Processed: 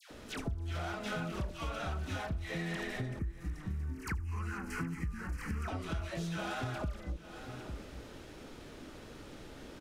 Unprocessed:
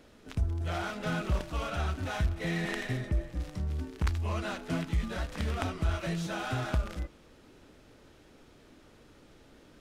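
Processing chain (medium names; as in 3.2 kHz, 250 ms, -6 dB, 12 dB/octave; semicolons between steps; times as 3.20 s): phase dispersion lows, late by 107 ms, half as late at 1.2 kHz; 3.19–5.68 s: static phaser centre 1.5 kHz, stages 4; delay 851 ms -22 dB; compression 6:1, threshold -43 dBFS, peak gain reduction 18.5 dB; trim +7.5 dB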